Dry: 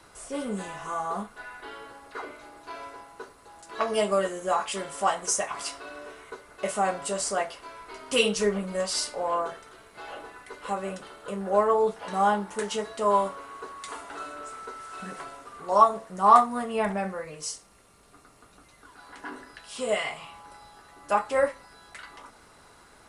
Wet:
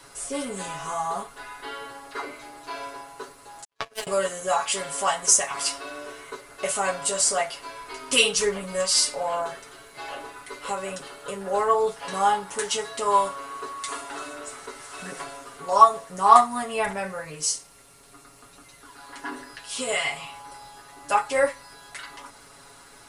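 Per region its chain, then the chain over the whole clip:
3.64–4.07 HPF 350 Hz + power-law curve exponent 3
whole clip: high shelf 3100 Hz +7.5 dB; comb 7.2 ms, depth 72%; dynamic EQ 380 Hz, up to -5 dB, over -34 dBFS, Q 0.85; gain +1 dB

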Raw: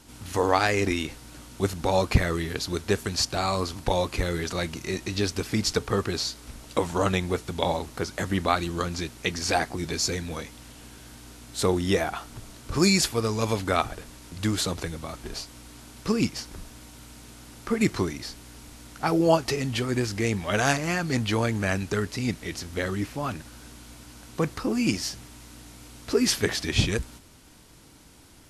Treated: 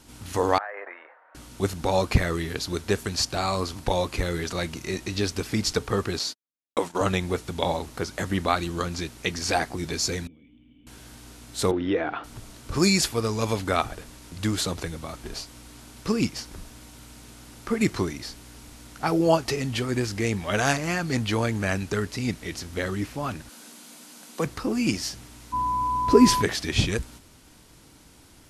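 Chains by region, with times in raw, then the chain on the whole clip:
0.58–1.35 elliptic band-pass 560–1800 Hz, stop band 60 dB + compressor, threshold -30 dBFS
6.19–7.01 HPF 220 Hz + gate -37 dBFS, range -59 dB
10.27–10.87 compressor, threshold -39 dBFS + vocal tract filter i
11.71–12.24 compressor 2.5:1, threshold -25 dBFS + speaker cabinet 110–3200 Hz, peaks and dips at 190 Hz -5 dB, 300 Hz +9 dB, 480 Hz +6 dB, 1500 Hz +4 dB
23.49–24.46 rippled Chebyshev high-pass 160 Hz, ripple 3 dB + high shelf 2900 Hz +8 dB + notch 5500 Hz, Q 27
25.52–26.41 low shelf 450 Hz +11.5 dB + whine 1000 Hz -22 dBFS + mismatched tape noise reduction decoder only
whole clip: dry

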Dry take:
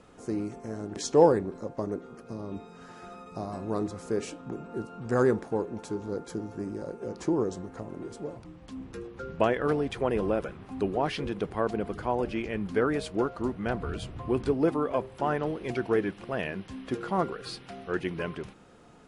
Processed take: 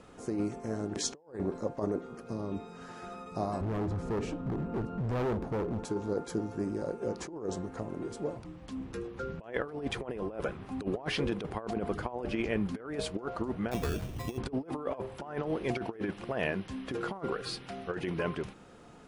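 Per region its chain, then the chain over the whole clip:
3.61–5.85 RIAA curve playback + compressor 2:1, threshold -28 dBFS + hard clip -31 dBFS
13.71–14.38 high shelf 2300 Hz -10.5 dB + sample-rate reducer 3000 Hz
whole clip: dynamic EQ 760 Hz, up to +4 dB, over -37 dBFS, Q 0.84; negative-ratio compressor -30 dBFS, ratio -0.5; gain -2.5 dB

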